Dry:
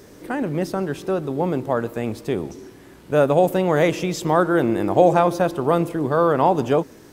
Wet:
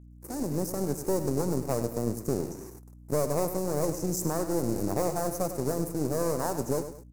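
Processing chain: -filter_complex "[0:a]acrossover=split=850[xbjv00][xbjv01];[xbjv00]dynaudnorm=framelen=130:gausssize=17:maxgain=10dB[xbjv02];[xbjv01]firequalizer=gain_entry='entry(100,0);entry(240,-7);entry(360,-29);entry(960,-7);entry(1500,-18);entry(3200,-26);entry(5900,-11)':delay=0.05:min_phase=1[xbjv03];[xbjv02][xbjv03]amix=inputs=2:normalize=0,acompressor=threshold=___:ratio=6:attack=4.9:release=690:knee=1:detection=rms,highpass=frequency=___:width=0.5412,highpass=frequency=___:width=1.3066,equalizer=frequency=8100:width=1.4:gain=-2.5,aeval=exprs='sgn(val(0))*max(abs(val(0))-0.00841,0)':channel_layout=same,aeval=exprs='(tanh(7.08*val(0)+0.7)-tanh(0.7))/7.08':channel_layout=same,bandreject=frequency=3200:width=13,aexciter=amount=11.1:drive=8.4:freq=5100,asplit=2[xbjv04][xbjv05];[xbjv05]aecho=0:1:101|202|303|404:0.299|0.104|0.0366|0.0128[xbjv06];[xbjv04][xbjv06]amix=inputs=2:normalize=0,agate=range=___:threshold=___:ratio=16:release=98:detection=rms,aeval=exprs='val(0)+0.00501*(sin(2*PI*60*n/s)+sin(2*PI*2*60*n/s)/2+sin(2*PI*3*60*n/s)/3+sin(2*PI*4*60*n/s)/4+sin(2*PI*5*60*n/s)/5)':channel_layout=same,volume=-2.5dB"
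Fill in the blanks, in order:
-15dB, 87, 87, -25dB, -46dB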